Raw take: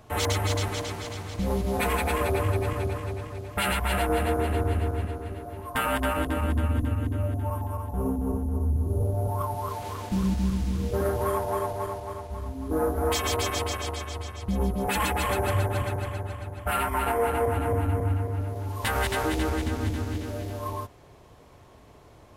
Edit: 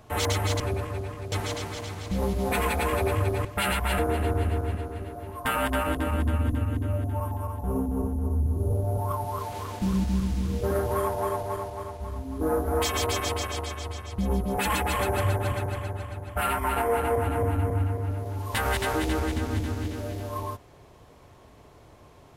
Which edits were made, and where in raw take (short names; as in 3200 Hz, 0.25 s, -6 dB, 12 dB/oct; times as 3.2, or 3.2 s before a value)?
2.73–3.45 move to 0.6
3.99–4.29 cut